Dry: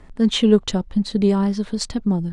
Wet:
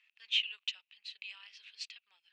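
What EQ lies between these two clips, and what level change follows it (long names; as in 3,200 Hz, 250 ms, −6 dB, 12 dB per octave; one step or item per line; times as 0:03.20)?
four-pole ladder high-pass 2,500 Hz, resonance 80%
high-frequency loss of the air 140 metres
0.0 dB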